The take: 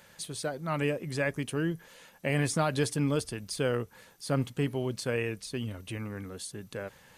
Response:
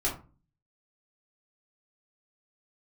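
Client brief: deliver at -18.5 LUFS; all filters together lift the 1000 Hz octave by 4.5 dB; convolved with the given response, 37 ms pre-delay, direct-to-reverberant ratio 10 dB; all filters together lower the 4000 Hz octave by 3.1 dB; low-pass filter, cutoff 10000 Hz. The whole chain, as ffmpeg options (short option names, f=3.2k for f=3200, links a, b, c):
-filter_complex "[0:a]lowpass=10k,equalizer=f=1k:t=o:g=6.5,equalizer=f=4k:t=o:g=-4.5,asplit=2[a][b];[1:a]atrim=start_sample=2205,adelay=37[c];[b][c]afir=irnorm=-1:irlink=0,volume=-17.5dB[d];[a][d]amix=inputs=2:normalize=0,volume=12.5dB"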